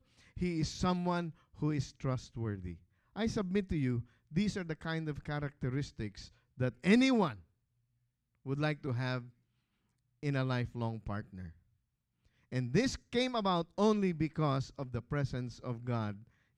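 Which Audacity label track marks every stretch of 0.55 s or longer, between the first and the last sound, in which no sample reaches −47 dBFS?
7.360000	8.460000	silence
9.270000	10.230000	silence
11.510000	12.520000	silence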